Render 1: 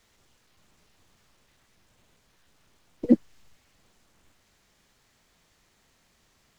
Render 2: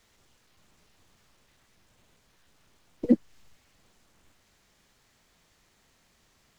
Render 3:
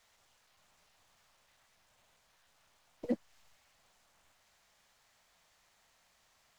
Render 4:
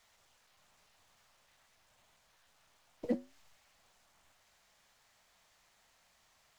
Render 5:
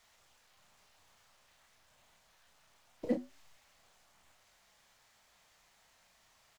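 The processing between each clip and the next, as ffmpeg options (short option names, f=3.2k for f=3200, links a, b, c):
-af "alimiter=limit=-9.5dB:level=0:latency=1:release=238"
-af "lowshelf=f=490:t=q:w=1.5:g=-8.5,volume=-3.5dB"
-af "flanger=delay=0.9:depth=9.2:regen=-79:speed=0.48:shape=sinusoidal,volume=5dB"
-filter_complex "[0:a]asplit=2[a][b];[b]adelay=32,volume=-7dB[c];[a][c]amix=inputs=2:normalize=0,volume=1dB"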